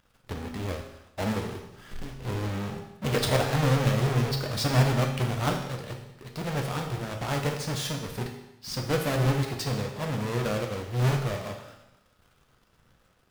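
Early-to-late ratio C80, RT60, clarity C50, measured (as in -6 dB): 8.5 dB, 0.95 s, 6.5 dB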